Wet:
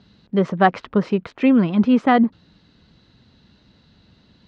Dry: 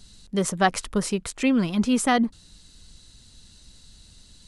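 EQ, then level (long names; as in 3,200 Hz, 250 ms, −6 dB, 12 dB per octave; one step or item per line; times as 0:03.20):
band-pass filter 130–6,000 Hz
high-frequency loss of the air 230 metres
high-shelf EQ 3,500 Hz −11 dB
+7.0 dB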